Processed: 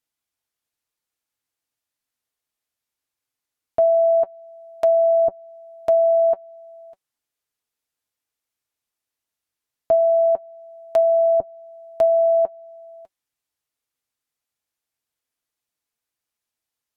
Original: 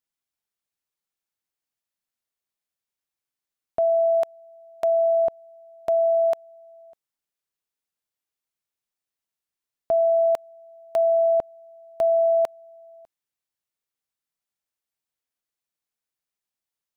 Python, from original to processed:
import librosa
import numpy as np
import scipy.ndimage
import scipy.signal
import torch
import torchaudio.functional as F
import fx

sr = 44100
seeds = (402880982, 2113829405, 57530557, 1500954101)

y = fx.notch_comb(x, sr, f0_hz=190.0)
y = fx.env_lowpass_down(y, sr, base_hz=670.0, full_db=-17.0)
y = y * 10.0 ** (5.5 / 20.0)